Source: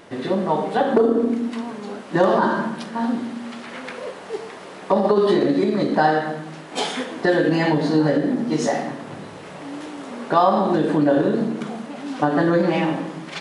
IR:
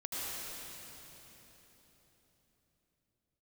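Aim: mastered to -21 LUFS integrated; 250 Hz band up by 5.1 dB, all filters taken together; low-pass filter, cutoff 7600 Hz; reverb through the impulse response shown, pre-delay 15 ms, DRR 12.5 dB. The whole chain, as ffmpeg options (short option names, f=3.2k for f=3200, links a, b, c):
-filter_complex "[0:a]lowpass=7.6k,equalizer=f=250:t=o:g=6.5,asplit=2[a][b];[1:a]atrim=start_sample=2205,adelay=15[c];[b][c]afir=irnorm=-1:irlink=0,volume=-16dB[d];[a][d]amix=inputs=2:normalize=0,volume=-3.5dB"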